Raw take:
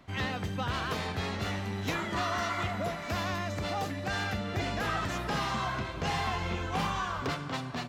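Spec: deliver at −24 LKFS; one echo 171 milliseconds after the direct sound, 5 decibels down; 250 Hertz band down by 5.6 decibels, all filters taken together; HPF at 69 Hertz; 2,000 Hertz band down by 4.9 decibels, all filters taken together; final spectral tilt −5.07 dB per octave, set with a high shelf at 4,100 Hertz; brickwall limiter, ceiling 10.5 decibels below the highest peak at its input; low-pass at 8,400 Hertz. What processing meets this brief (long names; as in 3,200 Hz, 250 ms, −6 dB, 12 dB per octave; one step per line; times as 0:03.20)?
high-pass filter 69 Hz
low-pass filter 8,400 Hz
parametric band 250 Hz −8 dB
parametric band 2,000 Hz −5.5 dB
high-shelf EQ 4,100 Hz −3.5 dB
brickwall limiter −32.5 dBFS
single-tap delay 171 ms −5 dB
level +16 dB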